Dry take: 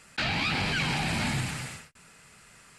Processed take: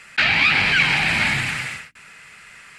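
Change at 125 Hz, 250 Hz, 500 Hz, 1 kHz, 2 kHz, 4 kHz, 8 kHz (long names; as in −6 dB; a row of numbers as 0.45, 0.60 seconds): +1.5, +1.5, +4.0, +7.0, +14.0, +9.5, +4.0 decibels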